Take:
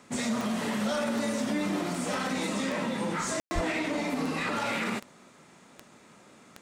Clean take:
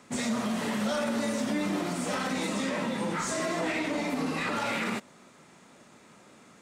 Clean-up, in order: de-click; 3.54–3.66 s: high-pass 140 Hz 24 dB/octave; room tone fill 3.40–3.51 s

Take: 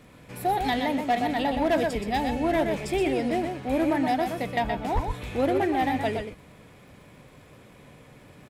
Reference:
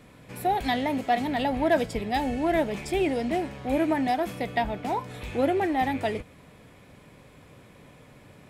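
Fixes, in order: clip repair -17.5 dBFS; de-click; de-plosive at 4.94 s; inverse comb 123 ms -6 dB

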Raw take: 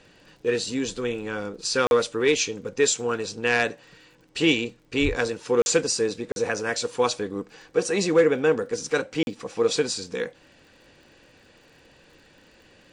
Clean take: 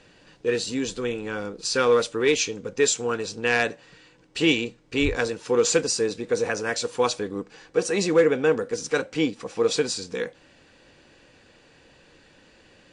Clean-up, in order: de-click; interpolate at 1.87/5.62/6.32/9.23 s, 41 ms

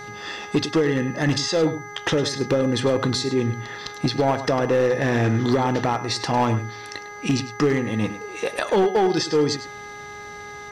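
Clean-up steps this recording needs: clip repair -13.5 dBFS; de-hum 412.4 Hz, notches 5; band-stop 6 kHz, Q 30; inverse comb 102 ms -13 dB

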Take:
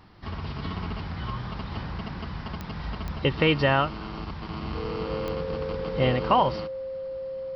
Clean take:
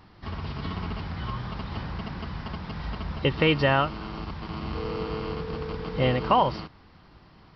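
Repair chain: de-click; band-stop 530 Hz, Q 30

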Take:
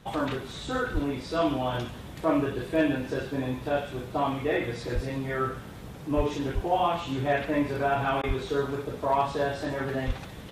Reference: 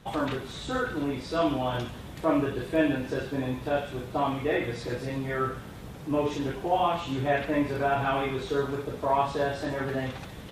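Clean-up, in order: clip repair -15 dBFS; de-plosive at 0.93/4.94/6.16/6.54/8.27/10.06 s; interpolate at 8.22 s, 13 ms

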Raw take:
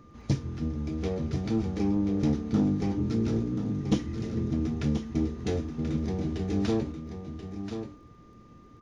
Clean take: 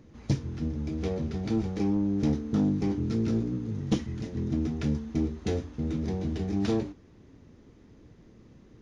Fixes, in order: de-click; band-stop 1.2 kHz, Q 30; inverse comb 1033 ms -8.5 dB

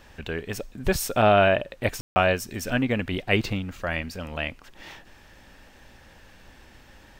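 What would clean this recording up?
room tone fill 2.01–2.16 s

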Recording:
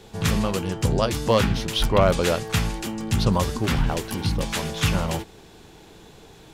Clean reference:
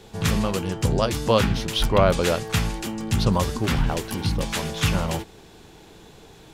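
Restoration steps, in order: clip repair -8.5 dBFS

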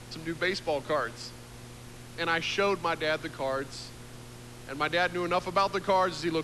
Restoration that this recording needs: clip repair -15.5 dBFS; de-hum 120.5 Hz, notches 4; noise reduction 28 dB, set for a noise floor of -46 dBFS

